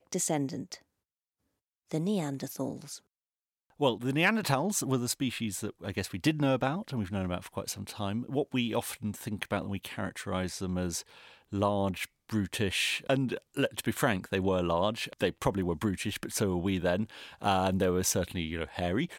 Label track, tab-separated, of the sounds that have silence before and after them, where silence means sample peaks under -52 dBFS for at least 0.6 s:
1.900000	2.990000	sound